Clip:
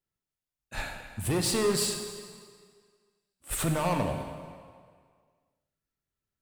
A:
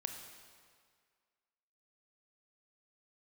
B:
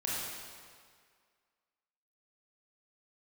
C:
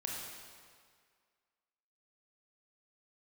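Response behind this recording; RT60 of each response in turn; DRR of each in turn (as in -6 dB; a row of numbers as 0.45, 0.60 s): A; 1.9, 1.9, 1.9 s; 4.5, -6.5, -2.5 dB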